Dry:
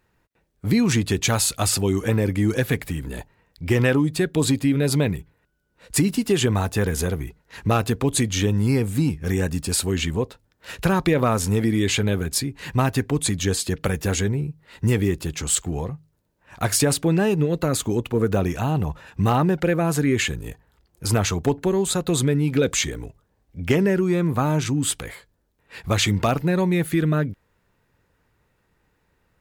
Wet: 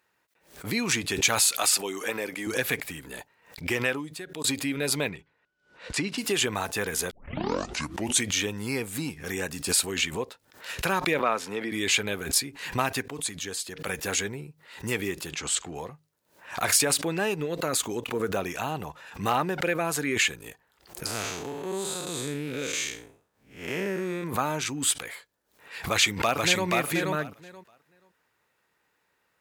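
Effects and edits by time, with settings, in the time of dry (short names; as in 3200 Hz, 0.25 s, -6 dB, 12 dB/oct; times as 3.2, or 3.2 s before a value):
1.5–2.47 Bessel high-pass 330 Hz
3.65–4.44 fade out
5.09–6.18 LPF 4500 Hz
7.11 tape start 1.15 s
11.19–11.72 three-band isolator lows -16 dB, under 200 Hz, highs -16 dB, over 4300 Hz
13.06–13.87 gain -6.5 dB
15.31–15.75 air absorption 61 m
21.06–24.24 time blur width 0.185 s
25.81–26.67 echo throw 0.48 s, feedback 15%, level -2 dB
whole clip: HPF 870 Hz 6 dB/oct; dynamic EQ 2400 Hz, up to +4 dB, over -44 dBFS, Q 6.8; backwards sustainer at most 130 dB/s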